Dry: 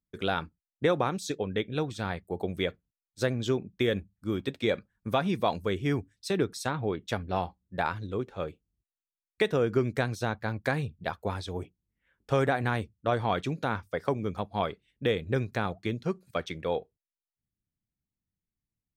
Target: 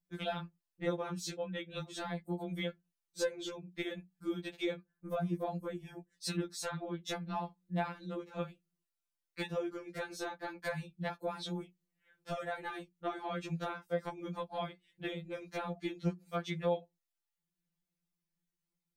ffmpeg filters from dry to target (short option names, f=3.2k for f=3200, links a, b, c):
-filter_complex "[0:a]asettb=1/sr,asplit=3[a][b][c];[a]atrim=end=4.764[d];[b]atrim=start=4.76:end=6.13,asetpts=PTS-STARTPTS,afade=t=in:d=0.004:c=qsin,afade=t=out:st=1.366:d=0.004:c=qsin,equalizer=f=3.4k:w=0.49:g=-12[e];[c]atrim=start=6.126[f];[d][e]acrossfade=d=0.004:c1=hsin:c2=qsin[g];[g][f]acrossfade=d=0.004:c1=qsin:c2=hsin,acompressor=threshold=-35dB:ratio=6,afftfilt=real='re*2.83*eq(mod(b,8),0)':imag='im*2.83*eq(mod(b,8),0)':win_size=2048:overlap=0.75,volume=3.5dB"